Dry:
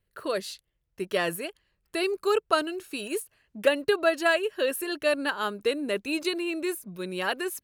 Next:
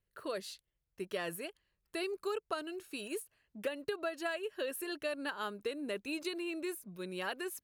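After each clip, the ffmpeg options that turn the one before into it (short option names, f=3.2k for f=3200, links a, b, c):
-af "acompressor=threshold=-25dB:ratio=6,volume=-8dB"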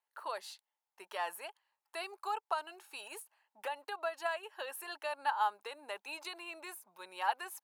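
-af "highpass=f=860:t=q:w=8.7,volume=-2.5dB"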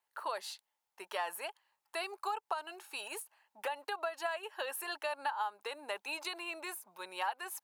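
-af "acompressor=threshold=-37dB:ratio=6,volume=4.5dB"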